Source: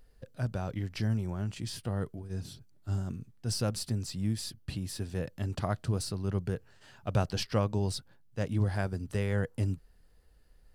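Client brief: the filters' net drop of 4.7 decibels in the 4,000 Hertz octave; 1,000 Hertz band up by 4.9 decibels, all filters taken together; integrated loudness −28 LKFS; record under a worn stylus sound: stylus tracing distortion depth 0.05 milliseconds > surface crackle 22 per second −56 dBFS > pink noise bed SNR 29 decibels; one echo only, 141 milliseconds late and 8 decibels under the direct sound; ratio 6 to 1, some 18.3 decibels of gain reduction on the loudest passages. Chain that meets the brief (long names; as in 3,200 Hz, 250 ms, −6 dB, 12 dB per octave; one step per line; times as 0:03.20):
parametric band 1,000 Hz +7 dB
parametric band 4,000 Hz −6.5 dB
downward compressor 6 to 1, threshold −43 dBFS
single-tap delay 141 ms −8 dB
stylus tracing distortion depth 0.05 ms
surface crackle 22 per second −56 dBFS
pink noise bed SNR 29 dB
level +19.5 dB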